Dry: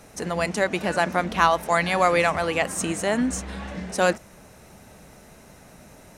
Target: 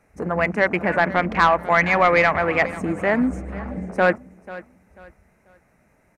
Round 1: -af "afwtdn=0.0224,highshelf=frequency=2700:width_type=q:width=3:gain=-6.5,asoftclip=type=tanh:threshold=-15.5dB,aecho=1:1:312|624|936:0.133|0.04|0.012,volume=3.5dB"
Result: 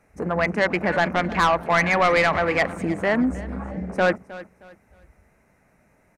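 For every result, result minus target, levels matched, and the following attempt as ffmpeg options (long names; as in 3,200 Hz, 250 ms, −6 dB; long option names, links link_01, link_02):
echo 178 ms early; soft clipping: distortion +7 dB
-af "afwtdn=0.0224,highshelf=frequency=2700:width_type=q:width=3:gain=-6.5,asoftclip=type=tanh:threshold=-15.5dB,aecho=1:1:490|980|1470:0.133|0.04|0.012,volume=3.5dB"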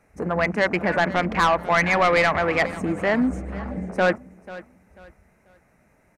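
soft clipping: distortion +7 dB
-af "afwtdn=0.0224,highshelf=frequency=2700:width_type=q:width=3:gain=-6.5,asoftclip=type=tanh:threshold=-9dB,aecho=1:1:490|980|1470:0.133|0.04|0.012,volume=3.5dB"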